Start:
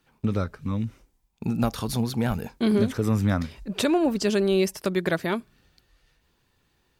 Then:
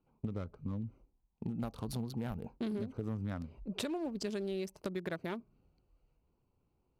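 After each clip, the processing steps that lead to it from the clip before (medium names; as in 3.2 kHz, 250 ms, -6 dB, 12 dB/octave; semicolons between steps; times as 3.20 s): local Wiener filter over 25 samples; compression, threshold -28 dBFS, peak gain reduction 10.5 dB; trim -6.5 dB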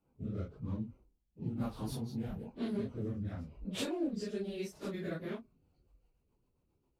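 phase randomisation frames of 100 ms; rotary cabinet horn 1 Hz, later 7.5 Hz, at 5.15 s; trim +1.5 dB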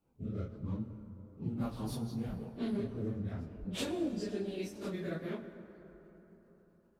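plate-style reverb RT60 4.2 s, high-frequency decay 0.4×, DRR 8.5 dB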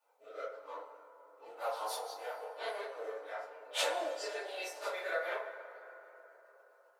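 elliptic high-pass 550 Hz, stop band 60 dB; FDN reverb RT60 0.44 s, low-frequency decay 0.7×, high-frequency decay 0.35×, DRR -6.5 dB; trim +3.5 dB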